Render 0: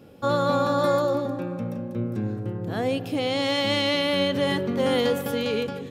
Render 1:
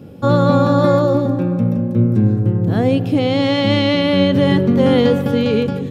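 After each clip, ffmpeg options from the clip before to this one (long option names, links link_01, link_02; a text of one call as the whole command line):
ffmpeg -i in.wav -filter_complex "[0:a]equalizer=frequency=130:width=0.41:gain=12,acrossover=split=5400[link_01][link_02];[link_02]acompressor=threshold=-52dB:ratio=4:attack=1:release=60[link_03];[link_01][link_03]amix=inputs=2:normalize=0,volume=4dB" out.wav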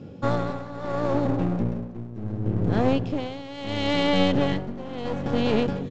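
ffmpeg -i in.wav -af "aresample=16000,aeval=exprs='clip(val(0),-1,0.0596)':channel_layout=same,aresample=44100,tremolo=f=0.72:d=0.86,volume=-3.5dB" out.wav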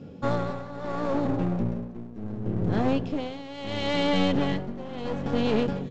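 ffmpeg -i in.wav -filter_complex "[0:a]asplit=2[link_01][link_02];[link_02]acontrast=85,volume=-2dB[link_03];[link_01][link_03]amix=inputs=2:normalize=0,flanger=delay=4.2:depth=1.2:regen=-67:speed=0.93:shape=triangular,volume=-6.5dB" out.wav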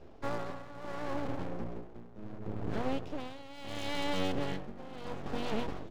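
ffmpeg -i in.wav -af "bandreject=frequency=60:width_type=h:width=6,bandreject=frequency=120:width_type=h:width=6,bandreject=frequency=180:width_type=h:width=6,bandreject=frequency=240:width_type=h:width=6,aeval=exprs='abs(val(0))':channel_layout=same,volume=-7.5dB" out.wav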